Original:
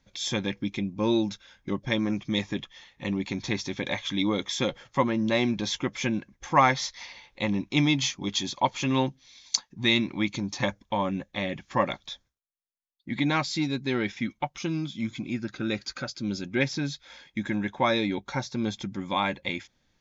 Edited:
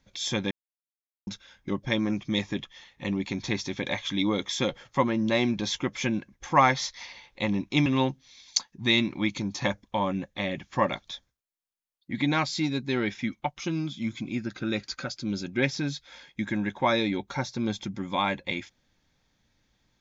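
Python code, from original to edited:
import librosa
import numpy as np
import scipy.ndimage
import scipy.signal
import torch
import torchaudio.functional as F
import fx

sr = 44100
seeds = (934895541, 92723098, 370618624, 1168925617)

y = fx.edit(x, sr, fx.silence(start_s=0.51, length_s=0.76),
    fx.cut(start_s=7.86, length_s=0.98), tone=tone)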